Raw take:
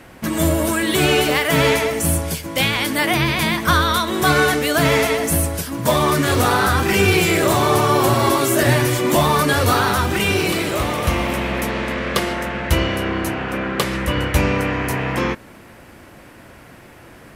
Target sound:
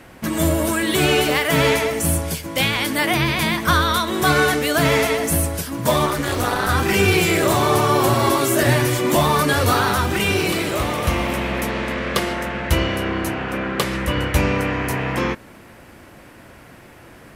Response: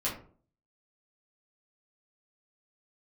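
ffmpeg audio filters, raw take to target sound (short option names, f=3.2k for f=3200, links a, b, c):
-filter_complex "[0:a]asettb=1/sr,asplit=3[a][b][c];[a]atrim=end=6.064[d];[b]atrim=start=6.06:end=6.69,asetpts=PTS-STARTPTS,afade=t=in:d=0.004:c=qsin,afade=t=out:st=0.626:d=0.004:c=qsin,tremolo=f=220:d=0.824[e];[c]atrim=start=6.686[f];[d][e]acrossfade=d=0.004:c1=hsin:c2=qsin[g];[g][f]acrossfade=d=0.004:c1=qsin:c2=hsin,volume=-1dB"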